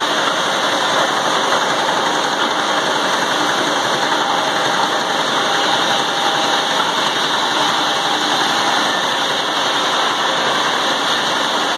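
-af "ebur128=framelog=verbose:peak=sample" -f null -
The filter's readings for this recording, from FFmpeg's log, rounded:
Integrated loudness:
  I:         -15.3 LUFS
  Threshold: -25.3 LUFS
Loudness range:
  LRA:         0.7 LU
  Threshold: -35.3 LUFS
  LRA low:   -15.6 LUFS
  LRA high:  -14.9 LUFS
Sample peak:
  Peak:       -1.3 dBFS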